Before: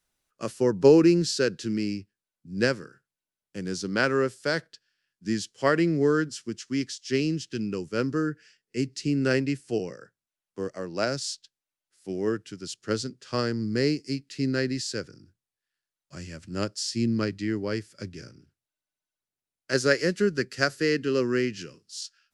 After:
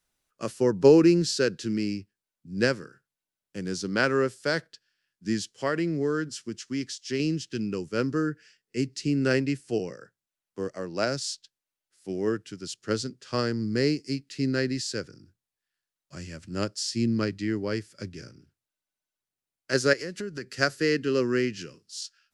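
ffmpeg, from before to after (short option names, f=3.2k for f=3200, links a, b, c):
-filter_complex "[0:a]asettb=1/sr,asplit=3[a][b][c];[a]atrim=end=5.544[d];[b]atrim=start=5.54:end=7.2,asetpts=PTS-STARTPTS,afade=t=in:d=0.004:c=qsin,afade=t=out:st=1.656:d=0.004:c=qsin,acompressor=threshold=-30dB:ratio=1.5:attack=3.2:release=140:knee=1:detection=peak[e];[c]atrim=start=7.196[f];[d][e]acrossfade=d=0.004:c1=hsin:c2=qsin[g];[g][f]acrossfade=d=0.004:c1=qsin:c2=hsin,asettb=1/sr,asplit=3[h][i][j];[h]atrim=end=19.934[k];[i]atrim=start=19.93:end=20.56,asetpts=PTS-STARTPTS,afade=t=in:d=0.004:c=qsin,afade=t=out:st=0.626:d=0.004:c=qsin,acompressor=threshold=-32dB:ratio=4:attack=3.2:release=140:knee=1:detection=peak[l];[j]atrim=start=20.556[m];[k][l]acrossfade=d=0.004:c1=hsin:c2=qsin[n];[n][m]acrossfade=d=0.004:c1=qsin:c2=hsin"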